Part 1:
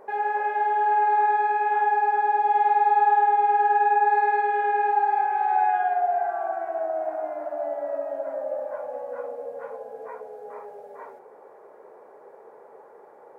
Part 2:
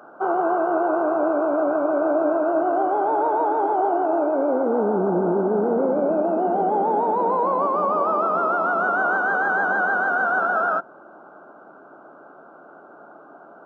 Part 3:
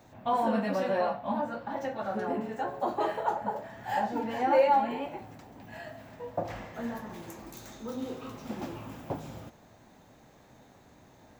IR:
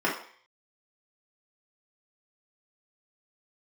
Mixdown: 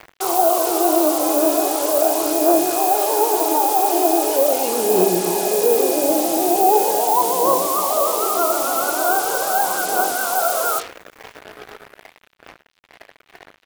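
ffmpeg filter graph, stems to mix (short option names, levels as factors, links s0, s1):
-filter_complex "[0:a]equalizer=f=470:t=o:w=1.5:g=3.5,adelay=1150,volume=0.251,asplit=2[s0][s1];[s1]volume=0.355[s2];[1:a]lowpass=f=1300:w=0.5412,lowpass=f=1300:w=1.3066,aphaser=in_gain=1:out_gain=1:delay=3.9:decay=0.53:speed=0.4:type=triangular,volume=1.19,asplit=2[s3][s4];[s4]volume=0.106[s5];[2:a]volume=0.251,asplit=2[s6][s7];[s7]volume=0.158[s8];[3:a]atrim=start_sample=2205[s9];[s2][s5][s8]amix=inputs=3:normalize=0[s10];[s10][s9]afir=irnorm=-1:irlink=0[s11];[s0][s3][s6][s11]amix=inputs=4:normalize=0,firequalizer=gain_entry='entry(130,0);entry(200,-10);entry(320,-4);entry(460,-3);entry(1700,-13);entry(2700,4)':delay=0.05:min_phase=1,acrusher=bits=5:mix=0:aa=0.5,crystalizer=i=8:c=0"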